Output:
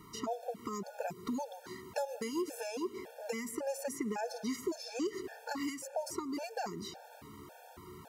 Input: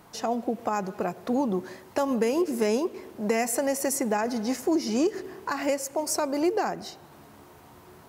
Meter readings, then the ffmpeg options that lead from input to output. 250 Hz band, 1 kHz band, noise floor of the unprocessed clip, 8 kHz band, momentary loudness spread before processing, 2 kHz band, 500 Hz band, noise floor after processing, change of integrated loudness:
−12.0 dB, −11.0 dB, −51 dBFS, −12.5 dB, 8 LU, −10.0 dB, −11.5 dB, −55 dBFS, −11.5 dB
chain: -filter_complex "[0:a]acrossover=split=900|3200[link_01][link_02][link_03];[link_01]acompressor=threshold=-35dB:ratio=4[link_04];[link_02]acompressor=threshold=-46dB:ratio=4[link_05];[link_03]acompressor=threshold=-45dB:ratio=4[link_06];[link_04][link_05][link_06]amix=inputs=3:normalize=0,afftfilt=real='re*gt(sin(2*PI*1.8*pts/sr)*(1-2*mod(floor(b*sr/1024/460),2)),0)':imag='im*gt(sin(2*PI*1.8*pts/sr)*(1-2*mod(floor(b*sr/1024/460),2)),0)':win_size=1024:overlap=0.75,volume=1dB"

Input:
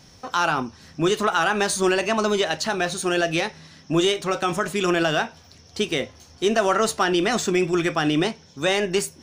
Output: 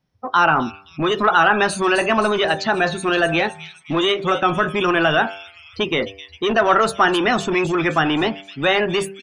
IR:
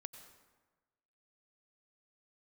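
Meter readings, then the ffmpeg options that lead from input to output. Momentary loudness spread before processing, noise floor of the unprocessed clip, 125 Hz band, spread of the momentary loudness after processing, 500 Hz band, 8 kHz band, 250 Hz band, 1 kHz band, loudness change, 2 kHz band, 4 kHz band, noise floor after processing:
7 LU, −50 dBFS, +2.5 dB, 9 LU, +3.0 dB, −6.0 dB, +2.0 dB, +6.5 dB, +4.0 dB, +6.0 dB, +3.0 dB, −47 dBFS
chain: -filter_complex "[0:a]afftdn=noise_reduction=30:noise_floor=-31,equalizer=frequency=6800:width_type=o:width=1.3:gain=-14.5,bandreject=frequency=97.38:width_type=h:width=4,bandreject=frequency=194.76:width_type=h:width=4,bandreject=frequency=292.14:width_type=h:width=4,bandreject=frequency=389.52:width_type=h:width=4,bandreject=frequency=486.9:width_type=h:width=4,bandreject=frequency=584.28:width_type=h:width=4,bandreject=frequency=681.66:width_type=h:width=4,bandreject=frequency=779.04:width_type=h:width=4,bandreject=frequency=876.42:width_type=h:width=4,bandreject=frequency=973.8:width_type=h:width=4,bandreject=frequency=1071.18:width_type=h:width=4,bandreject=frequency=1168.56:width_type=h:width=4,bandreject=frequency=1265.94:width_type=h:width=4,bandreject=frequency=1363.32:width_type=h:width=4,bandreject=frequency=1460.7:width_type=h:width=4,bandreject=frequency=1558.08:width_type=h:width=4,bandreject=frequency=1655.46:width_type=h:width=4,bandreject=frequency=1752.84:width_type=h:width=4,bandreject=frequency=1850.22:width_type=h:width=4,acrossover=split=780|2900[link_01][link_02][link_03];[link_01]asoftclip=type=tanh:threshold=-27dB[link_04];[link_03]asplit=8[link_05][link_06][link_07][link_08][link_09][link_10][link_11][link_12];[link_06]adelay=261,afreqshift=-130,volume=-7dB[link_13];[link_07]adelay=522,afreqshift=-260,volume=-12.2dB[link_14];[link_08]adelay=783,afreqshift=-390,volume=-17.4dB[link_15];[link_09]adelay=1044,afreqshift=-520,volume=-22.6dB[link_16];[link_10]adelay=1305,afreqshift=-650,volume=-27.8dB[link_17];[link_11]adelay=1566,afreqshift=-780,volume=-33dB[link_18];[link_12]adelay=1827,afreqshift=-910,volume=-38.2dB[link_19];[link_05][link_13][link_14][link_15][link_16][link_17][link_18][link_19]amix=inputs=8:normalize=0[link_20];[link_04][link_02][link_20]amix=inputs=3:normalize=0,volume=8.5dB"

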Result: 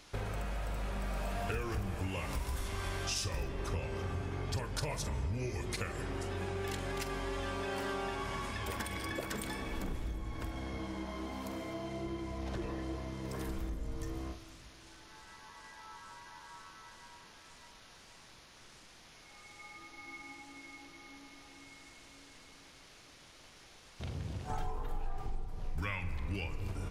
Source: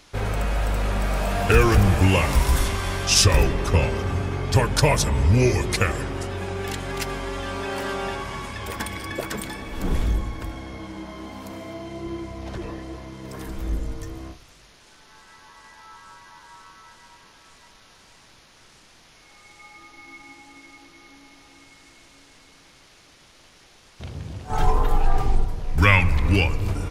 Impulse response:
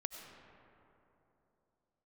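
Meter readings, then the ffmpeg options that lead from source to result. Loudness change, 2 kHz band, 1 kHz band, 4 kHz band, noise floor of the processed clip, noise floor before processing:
−16.5 dB, −15.5 dB, −14.0 dB, −15.5 dB, −57 dBFS, −53 dBFS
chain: -filter_complex "[0:a]acompressor=threshold=-30dB:ratio=6,asplit=2[link_01][link_02];[1:a]atrim=start_sample=2205,adelay=46[link_03];[link_02][link_03]afir=irnorm=-1:irlink=0,volume=-9dB[link_04];[link_01][link_04]amix=inputs=2:normalize=0,volume=-5dB"

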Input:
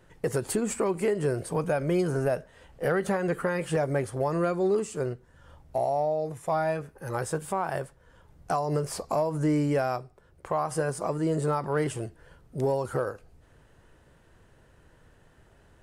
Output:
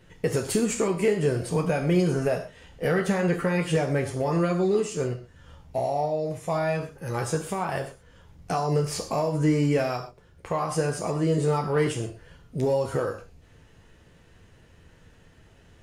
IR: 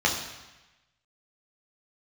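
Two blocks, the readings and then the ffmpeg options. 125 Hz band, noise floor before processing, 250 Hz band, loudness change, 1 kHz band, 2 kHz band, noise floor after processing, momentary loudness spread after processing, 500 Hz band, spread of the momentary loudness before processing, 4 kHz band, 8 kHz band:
+4.5 dB, −59 dBFS, +3.5 dB, +2.5 dB, +0.5 dB, +3.0 dB, −56 dBFS, 9 LU, +2.0 dB, 8 LU, +7.0 dB, +3.5 dB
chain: -filter_complex "[0:a]asplit=2[link_01][link_02];[1:a]atrim=start_sample=2205,atrim=end_sample=6174,highshelf=frequency=2000:gain=11[link_03];[link_02][link_03]afir=irnorm=-1:irlink=0,volume=-19.5dB[link_04];[link_01][link_04]amix=inputs=2:normalize=0,volume=2.5dB"

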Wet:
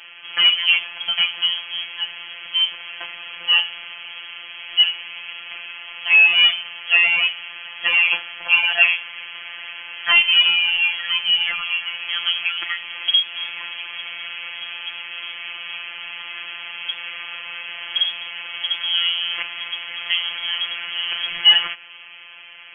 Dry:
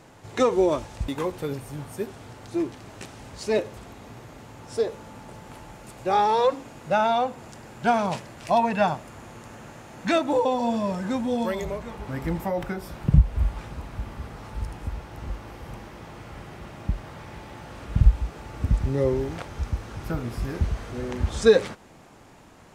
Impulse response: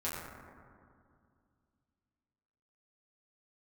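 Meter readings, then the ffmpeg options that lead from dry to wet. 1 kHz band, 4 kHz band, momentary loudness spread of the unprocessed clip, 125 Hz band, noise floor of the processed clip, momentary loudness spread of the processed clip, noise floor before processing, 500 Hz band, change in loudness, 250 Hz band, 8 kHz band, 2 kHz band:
−8.0 dB, +25.0 dB, 22 LU, below −30 dB, −41 dBFS, 19 LU, −50 dBFS, −20.5 dB, +8.0 dB, below −25 dB, below −35 dB, +18.0 dB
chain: -filter_complex "[0:a]asplit=2[link_01][link_02];[link_02]highpass=frequency=720:poles=1,volume=22dB,asoftclip=type=tanh:threshold=-4dB[link_03];[link_01][link_03]amix=inputs=2:normalize=0,lowpass=frequency=1600:poles=1,volume=-6dB,lowpass=frequency=2900:width_type=q:width=0.5098,lowpass=frequency=2900:width_type=q:width=0.6013,lowpass=frequency=2900:width_type=q:width=0.9,lowpass=frequency=2900:width_type=q:width=2.563,afreqshift=-3400,afftfilt=real='hypot(re,im)*cos(PI*b)':imag='0':win_size=1024:overlap=0.75,volume=2.5dB"

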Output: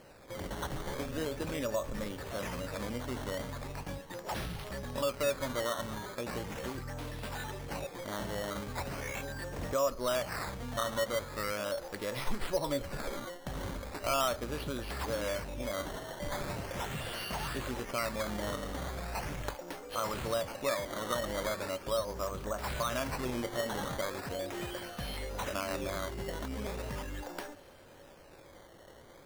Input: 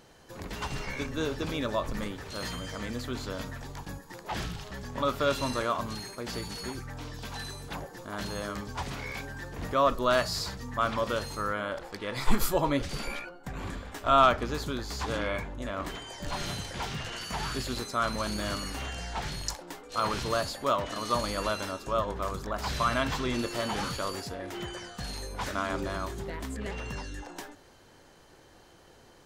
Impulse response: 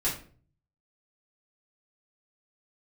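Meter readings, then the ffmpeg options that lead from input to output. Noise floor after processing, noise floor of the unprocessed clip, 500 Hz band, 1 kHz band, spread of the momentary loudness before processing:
−55 dBFS, −56 dBFS, −2.5 dB, −7.5 dB, 12 LU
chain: -af "equalizer=frequency=560:width_type=o:width=0.26:gain=8.5,acrusher=samples=12:mix=1:aa=0.000001:lfo=1:lforange=12:lforate=0.39,acompressor=threshold=-36dB:ratio=2"

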